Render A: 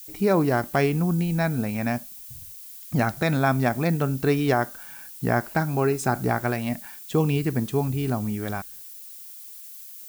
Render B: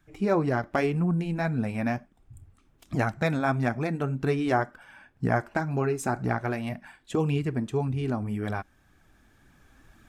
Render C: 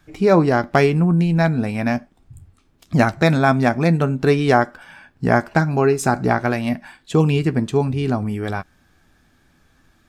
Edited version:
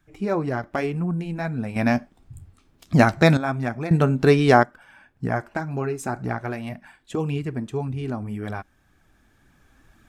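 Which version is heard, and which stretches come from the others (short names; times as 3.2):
B
1.76–3.37 from C
3.91–4.63 from C
not used: A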